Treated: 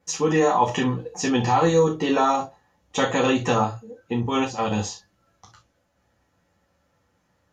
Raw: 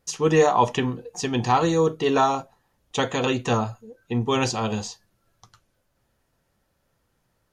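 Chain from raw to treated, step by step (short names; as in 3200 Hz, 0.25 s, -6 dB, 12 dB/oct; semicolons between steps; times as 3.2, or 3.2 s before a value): limiter -15 dBFS, peak gain reduction 8.5 dB; 4.12–4.71 level quantiser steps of 13 dB; reverb, pre-delay 3 ms, DRR 0 dB; gain -5 dB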